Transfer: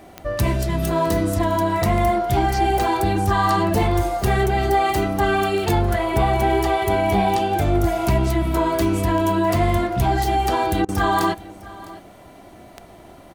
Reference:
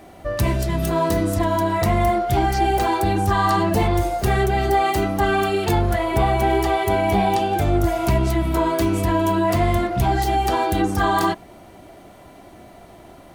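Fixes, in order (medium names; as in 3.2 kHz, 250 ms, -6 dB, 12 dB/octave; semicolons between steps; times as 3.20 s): de-click; interpolate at 10.85 s, 35 ms; inverse comb 656 ms -19.5 dB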